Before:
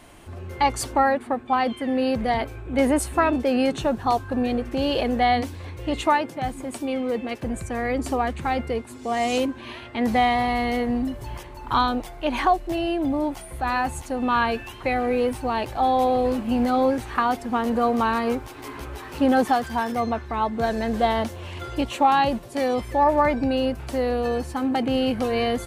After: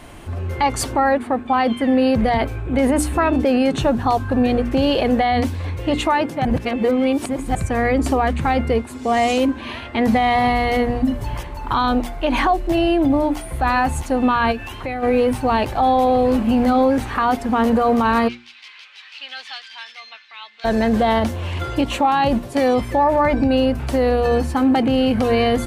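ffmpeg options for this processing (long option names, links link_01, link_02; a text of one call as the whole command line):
ffmpeg -i in.wav -filter_complex "[0:a]asplit=3[link_01][link_02][link_03];[link_01]afade=type=out:start_time=14.51:duration=0.02[link_04];[link_02]acompressor=threshold=-35dB:ratio=2.5:attack=3.2:release=140:knee=1:detection=peak,afade=type=in:start_time=14.51:duration=0.02,afade=type=out:start_time=15.02:duration=0.02[link_05];[link_03]afade=type=in:start_time=15.02:duration=0.02[link_06];[link_04][link_05][link_06]amix=inputs=3:normalize=0,asplit=3[link_07][link_08][link_09];[link_07]afade=type=out:start_time=18.27:duration=0.02[link_10];[link_08]asuperpass=centerf=3400:order=4:qfactor=1.3,afade=type=in:start_time=18.27:duration=0.02,afade=type=out:start_time=20.64:duration=0.02[link_11];[link_09]afade=type=in:start_time=20.64:duration=0.02[link_12];[link_10][link_11][link_12]amix=inputs=3:normalize=0,asplit=3[link_13][link_14][link_15];[link_13]atrim=end=6.452[link_16];[link_14]atrim=start=6.448:end=7.552,asetpts=PTS-STARTPTS,areverse[link_17];[link_15]atrim=start=7.548[link_18];[link_16][link_17]acrossfade=duration=0.004:curve1=hsin:curve2=hsin[link_19];[link_19][link_18]acrossfade=duration=0.004:curve1=hsin:curve2=hsin,bass=frequency=250:gain=4,treble=frequency=4000:gain=-3,bandreject=frequency=60:width_type=h:width=6,bandreject=frequency=120:width_type=h:width=6,bandreject=frequency=180:width_type=h:width=6,bandreject=frequency=240:width_type=h:width=6,bandreject=frequency=300:width_type=h:width=6,bandreject=frequency=360:width_type=h:width=6,alimiter=limit=-16.5dB:level=0:latency=1:release=57,volume=7.5dB" out.wav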